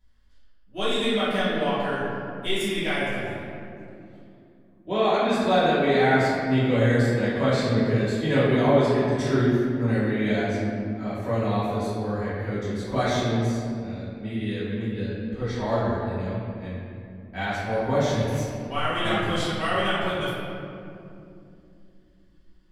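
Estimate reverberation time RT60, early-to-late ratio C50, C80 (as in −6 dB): 2.7 s, −2.0 dB, 0.0 dB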